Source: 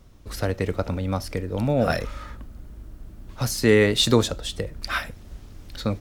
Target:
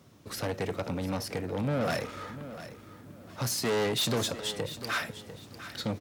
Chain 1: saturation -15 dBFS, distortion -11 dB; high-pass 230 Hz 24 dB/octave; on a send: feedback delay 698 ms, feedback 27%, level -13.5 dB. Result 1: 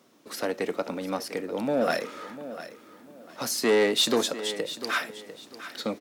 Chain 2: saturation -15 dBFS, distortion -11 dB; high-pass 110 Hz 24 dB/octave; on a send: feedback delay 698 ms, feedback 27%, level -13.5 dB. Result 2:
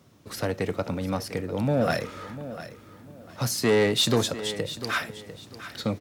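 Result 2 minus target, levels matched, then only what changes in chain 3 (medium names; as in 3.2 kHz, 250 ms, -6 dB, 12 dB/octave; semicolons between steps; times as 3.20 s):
saturation: distortion -7 dB
change: saturation -25.5 dBFS, distortion -4 dB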